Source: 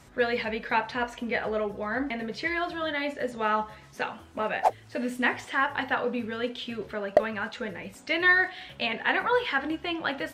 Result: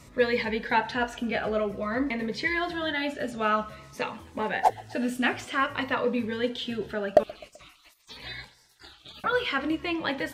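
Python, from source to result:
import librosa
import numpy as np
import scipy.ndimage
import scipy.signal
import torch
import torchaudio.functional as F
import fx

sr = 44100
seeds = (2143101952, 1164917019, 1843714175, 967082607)

y = fx.spec_gate(x, sr, threshold_db=-25, keep='weak', at=(7.23, 9.24))
y = fx.echo_feedback(y, sr, ms=128, feedback_pct=52, wet_db=-23)
y = fx.notch_cascade(y, sr, direction='falling', hz=0.51)
y = y * 10.0 ** (3.5 / 20.0)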